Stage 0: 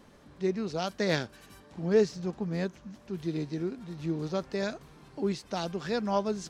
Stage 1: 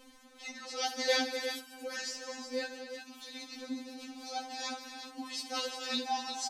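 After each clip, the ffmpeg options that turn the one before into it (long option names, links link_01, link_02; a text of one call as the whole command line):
ffmpeg -i in.wav -filter_complex "[0:a]highshelf=frequency=2100:gain=10,asplit=2[link_01][link_02];[link_02]aecho=0:1:68|157|246|355|369:0.237|0.211|0.266|0.282|0.282[link_03];[link_01][link_03]amix=inputs=2:normalize=0,afftfilt=real='re*3.46*eq(mod(b,12),0)':imag='im*3.46*eq(mod(b,12),0)':win_size=2048:overlap=0.75,volume=-1dB" out.wav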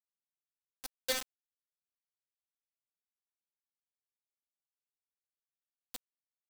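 ffmpeg -i in.wav -af "bandreject=frequency=60:width_type=h:width=6,bandreject=frequency=120:width_type=h:width=6,bandreject=frequency=180:width_type=h:width=6,bandreject=frequency=240:width_type=h:width=6,acrusher=bits=3:mix=0:aa=0.000001,volume=-6dB" out.wav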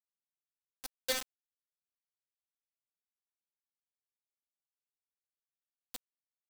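ffmpeg -i in.wav -af anull out.wav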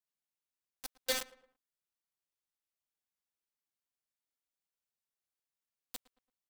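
ffmpeg -i in.wav -filter_complex "[0:a]asplit=2[link_01][link_02];[link_02]adelay=112,lowpass=frequency=2000:poles=1,volume=-19dB,asplit=2[link_03][link_04];[link_04]adelay=112,lowpass=frequency=2000:poles=1,volume=0.41,asplit=2[link_05][link_06];[link_06]adelay=112,lowpass=frequency=2000:poles=1,volume=0.41[link_07];[link_01][link_03][link_05][link_07]amix=inputs=4:normalize=0" out.wav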